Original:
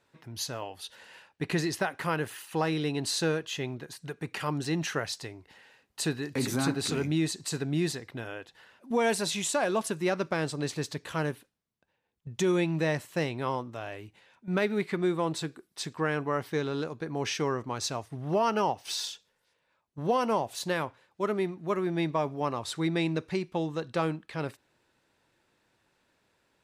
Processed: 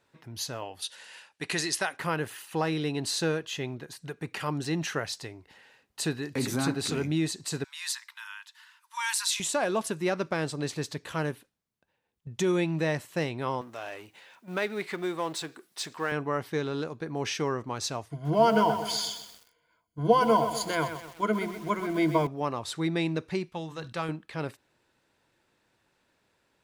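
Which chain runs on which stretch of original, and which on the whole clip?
0:00.82–0:01.97: Butterworth low-pass 11,000 Hz 48 dB per octave + spectral tilt +3 dB per octave
0:07.64–0:09.40: Chebyshev high-pass filter 900 Hz, order 8 + high-shelf EQ 4,000 Hz +8 dB
0:13.61–0:16.12: mu-law and A-law mismatch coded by mu + high-pass filter 540 Hz 6 dB per octave
0:18.11–0:22.27: EQ curve with evenly spaced ripples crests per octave 1.8, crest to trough 16 dB + feedback echo at a low word length 127 ms, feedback 55%, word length 7 bits, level −9 dB
0:23.49–0:24.09: parametric band 360 Hz −8.5 dB 2 octaves + mains-hum notches 50/100/150/200/250/300 Hz + level that may fall only so fast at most 110 dB per second
whole clip: no processing

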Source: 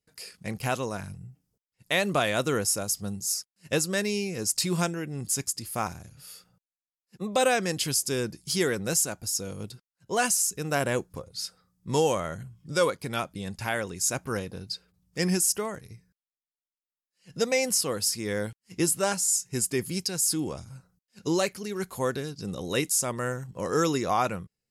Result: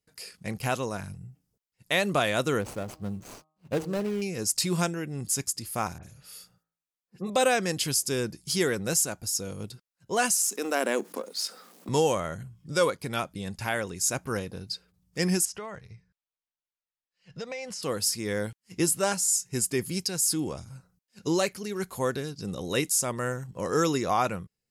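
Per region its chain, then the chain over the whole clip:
0:02.61–0:04.22: running median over 25 samples + hum removal 156 Hz, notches 8
0:05.98–0:07.30: hum removal 55.66 Hz, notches 35 + all-pass dispersion highs, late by 53 ms, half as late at 2,400 Hz
0:10.41–0:11.89: mu-law and A-law mismatch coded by A + elliptic high-pass filter 220 Hz + envelope flattener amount 50%
0:15.45–0:17.83: low-pass filter 4,200 Hz + parametric band 290 Hz −10 dB 0.92 octaves + downward compressor 4 to 1, threshold −34 dBFS
whole clip: no processing

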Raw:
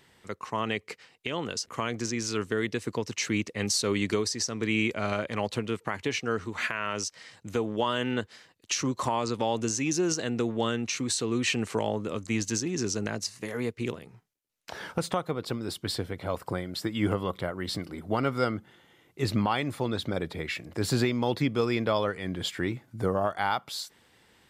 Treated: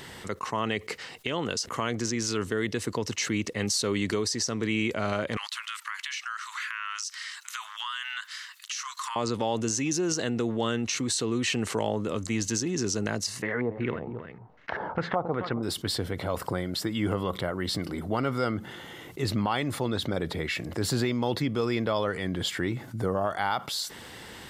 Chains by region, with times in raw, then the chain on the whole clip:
0:05.37–0:09.16: Butterworth high-pass 1,100 Hz 48 dB per octave + downward compressor, threshold −37 dBFS
0:13.42–0:15.63: low-pass filter 6,700 Hz 24 dB per octave + single-tap delay 272 ms −16 dB + auto-filter low-pass square 2.6 Hz 850–1,900 Hz
whole clip: notch filter 2,400 Hz, Q 15; envelope flattener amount 50%; level −3 dB

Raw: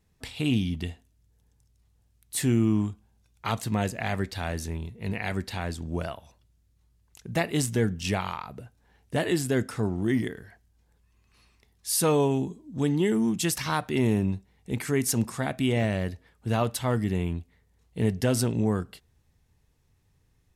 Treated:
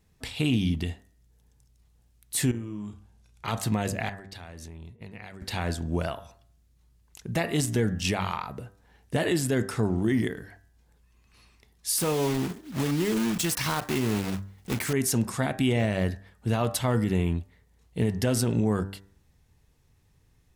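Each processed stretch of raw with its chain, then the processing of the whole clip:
0:02.51–0:03.48: low-pass filter 12,000 Hz + downward compressor 12 to 1, threshold −35 dBFS + double-tracking delay 34 ms −7 dB
0:04.09–0:05.42: downward expander −39 dBFS + high-shelf EQ 11,000 Hz −6.5 dB + downward compressor 12 to 1, threshold −41 dBFS
0:11.98–0:14.94: one scale factor per block 3 bits + downward compressor 4 to 1, threshold −26 dBFS
whole clip: hum removal 97.93 Hz, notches 20; de-essing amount 35%; brickwall limiter −19.5 dBFS; level +3.5 dB

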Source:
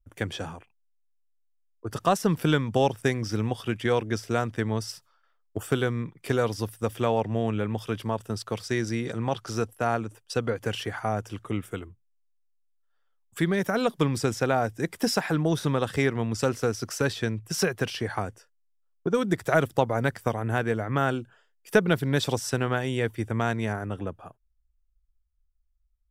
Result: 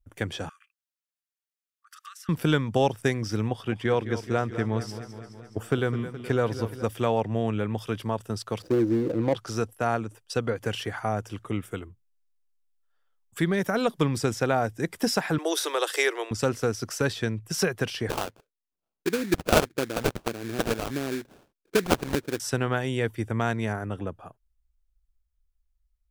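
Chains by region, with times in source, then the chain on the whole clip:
0:00.49–0:02.29: downward compressor 2 to 1, threshold −46 dBFS + linear-phase brick-wall high-pass 1,100 Hz
0:03.48–0:06.84: high-shelf EQ 4,200 Hz −8.5 dB + feedback echo with a swinging delay time 211 ms, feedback 64%, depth 66 cents, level −12.5 dB
0:08.62–0:09.35: running median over 41 samples + hollow resonant body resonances 320/500 Hz, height 14 dB, ringing for 55 ms
0:15.38–0:16.31: Butterworth high-pass 330 Hz 72 dB per octave + high-shelf EQ 2,500 Hz +11.5 dB
0:18.09–0:22.40: RIAA equalisation recording + auto-filter low-pass square 1.6 Hz 340–2,100 Hz + sample-rate reduction 2,000 Hz, jitter 20%
whole clip: no processing

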